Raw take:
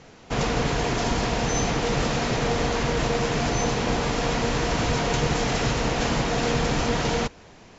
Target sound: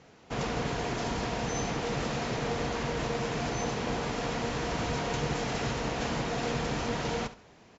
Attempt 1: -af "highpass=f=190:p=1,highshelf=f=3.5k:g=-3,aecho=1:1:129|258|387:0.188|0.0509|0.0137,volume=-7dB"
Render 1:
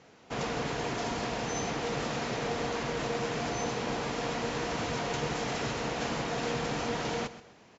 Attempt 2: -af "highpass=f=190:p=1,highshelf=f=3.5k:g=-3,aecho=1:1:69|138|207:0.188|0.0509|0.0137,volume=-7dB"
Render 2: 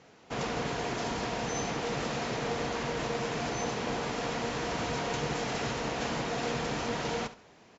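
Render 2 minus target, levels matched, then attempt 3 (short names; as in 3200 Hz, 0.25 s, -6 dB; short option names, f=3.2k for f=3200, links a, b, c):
125 Hz band -3.0 dB
-af "highpass=f=66:p=1,highshelf=f=3.5k:g=-3,aecho=1:1:69|138|207:0.188|0.0509|0.0137,volume=-7dB"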